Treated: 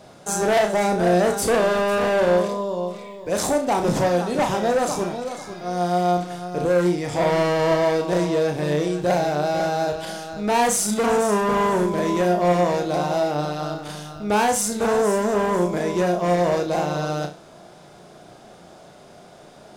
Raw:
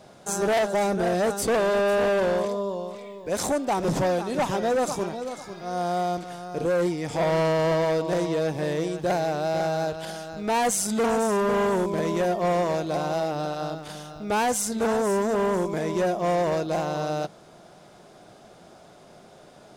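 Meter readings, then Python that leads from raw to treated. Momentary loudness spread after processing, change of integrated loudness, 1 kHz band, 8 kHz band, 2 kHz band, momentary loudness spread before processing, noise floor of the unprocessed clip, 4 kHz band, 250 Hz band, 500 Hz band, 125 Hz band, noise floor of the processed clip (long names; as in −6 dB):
9 LU, +4.0 dB, +4.5 dB, +4.0 dB, +4.0 dB, 9 LU, −50 dBFS, +4.0 dB, +4.5 dB, +3.5 dB, +4.5 dB, −46 dBFS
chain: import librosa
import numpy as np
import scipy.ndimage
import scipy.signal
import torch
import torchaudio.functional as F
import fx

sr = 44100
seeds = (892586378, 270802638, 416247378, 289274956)

y = fx.room_flutter(x, sr, wall_m=5.8, rt60_s=0.31)
y = y * librosa.db_to_amplitude(3.0)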